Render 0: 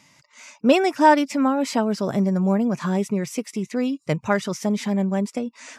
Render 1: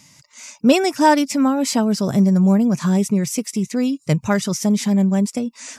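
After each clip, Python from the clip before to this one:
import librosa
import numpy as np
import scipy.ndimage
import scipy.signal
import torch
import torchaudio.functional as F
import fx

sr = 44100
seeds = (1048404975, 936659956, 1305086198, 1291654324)

y = fx.bass_treble(x, sr, bass_db=9, treble_db=11)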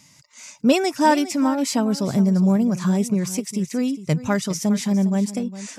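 y = x + 10.0 ** (-14.5 / 20.0) * np.pad(x, (int(407 * sr / 1000.0), 0))[:len(x)]
y = y * librosa.db_to_amplitude(-3.0)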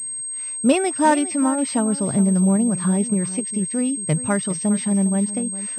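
y = fx.pwm(x, sr, carrier_hz=8400.0)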